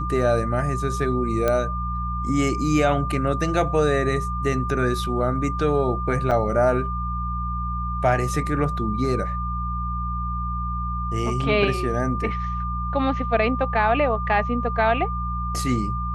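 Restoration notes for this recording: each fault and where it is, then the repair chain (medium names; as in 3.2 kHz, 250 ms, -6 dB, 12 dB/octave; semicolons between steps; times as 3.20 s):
hum 60 Hz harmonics 3 -28 dBFS
whine 1.2 kHz -28 dBFS
1.48 s: pop -9 dBFS
6.31–6.32 s: dropout 6.2 ms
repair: de-click; band-stop 1.2 kHz, Q 30; de-hum 60 Hz, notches 3; interpolate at 6.31 s, 6.2 ms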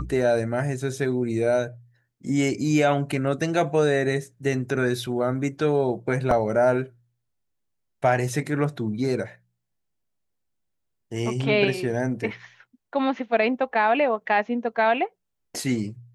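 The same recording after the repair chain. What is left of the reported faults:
nothing left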